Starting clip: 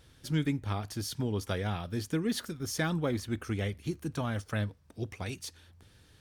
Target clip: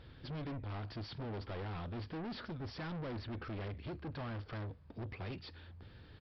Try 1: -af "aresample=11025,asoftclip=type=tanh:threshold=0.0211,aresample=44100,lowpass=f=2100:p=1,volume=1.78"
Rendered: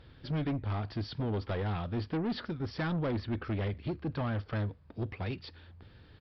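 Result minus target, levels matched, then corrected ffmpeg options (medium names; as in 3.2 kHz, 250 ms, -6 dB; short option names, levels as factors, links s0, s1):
saturation: distortion -6 dB
-af "aresample=11025,asoftclip=type=tanh:threshold=0.00562,aresample=44100,lowpass=f=2100:p=1,volume=1.78"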